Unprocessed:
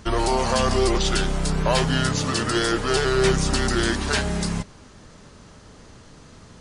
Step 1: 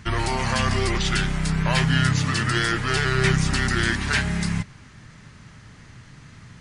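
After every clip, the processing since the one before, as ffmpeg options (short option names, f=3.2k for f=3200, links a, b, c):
-af "equalizer=f=125:t=o:w=1:g=11,equalizer=f=500:t=o:w=1:g=-7,equalizer=f=2k:t=o:w=1:g=10,volume=-3.5dB"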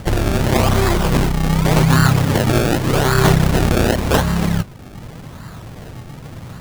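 -filter_complex "[0:a]asplit=2[a][b];[b]acompressor=mode=upward:threshold=-26dB:ratio=2.5,volume=-3dB[c];[a][c]amix=inputs=2:normalize=0,acrusher=samples=30:mix=1:aa=0.000001:lfo=1:lforange=30:lforate=0.87,volume=2.5dB"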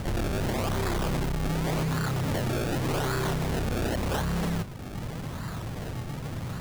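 -af "alimiter=limit=-10dB:level=0:latency=1:release=439,asoftclip=type=tanh:threshold=-25.5dB"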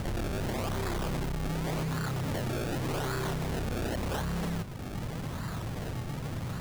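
-af "acompressor=threshold=-31dB:ratio=6"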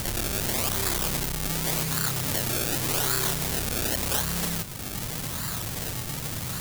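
-af "crystalizer=i=6.5:c=0"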